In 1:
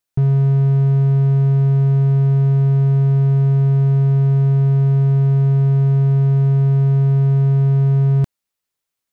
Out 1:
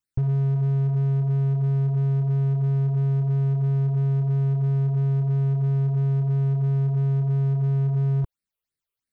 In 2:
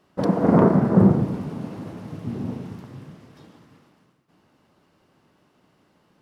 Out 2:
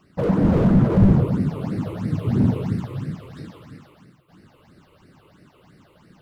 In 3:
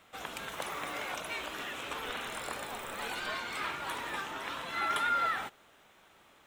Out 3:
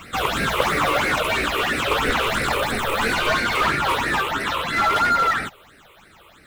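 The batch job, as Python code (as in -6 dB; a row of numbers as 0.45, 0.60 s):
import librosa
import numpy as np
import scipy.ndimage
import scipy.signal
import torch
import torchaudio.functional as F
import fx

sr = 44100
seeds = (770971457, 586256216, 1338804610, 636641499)

y = fx.low_shelf(x, sr, hz=440.0, db=4.0)
y = fx.rider(y, sr, range_db=5, speed_s=2.0)
y = fx.phaser_stages(y, sr, stages=8, low_hz=210.0, high_hz=1000.0, hz=3.0, feedback_pct=20)
y = fx.slew_limit(y, sr, full_power_hz=26.0)
y = y * 10.0 ** (-22 / 20.0) / np.sqrt(np.mean(np.square(y)))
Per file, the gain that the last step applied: -6.0, +5.0, +18.5 dB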